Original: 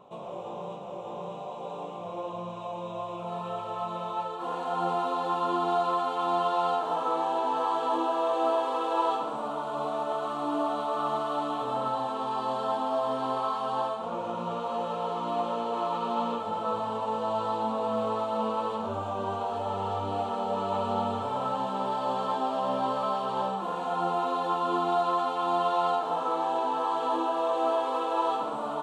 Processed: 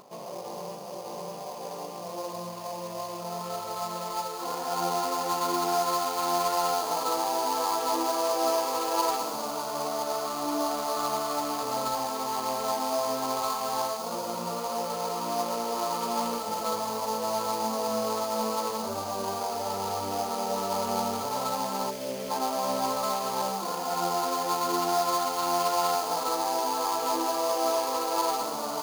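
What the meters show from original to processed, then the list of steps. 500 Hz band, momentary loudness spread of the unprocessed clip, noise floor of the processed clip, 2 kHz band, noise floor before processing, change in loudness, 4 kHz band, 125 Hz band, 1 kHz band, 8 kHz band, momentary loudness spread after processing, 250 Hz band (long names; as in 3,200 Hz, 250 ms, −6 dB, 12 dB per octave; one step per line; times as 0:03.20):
0.0 dB, 9 LU, −38 dBFS, +2.5 dB, −38 dBFS, +0.5 dB, +7.5 dB, −2.5 dB, −0.5 dB, can't be measured, 10 LU, −0.5 dB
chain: high-pass filter 130 Hz
gain on a spectral selection 0:21.90–0:22.31, 650–2,300 Hz −17 dB
upward compression, threshold −50 dBFS
sample-rate reduction 5,600 Hz, jitter 20%
on a send: delay with a high-pass on its return 203 ms, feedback 79%, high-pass 3,700 Hz, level −8 dB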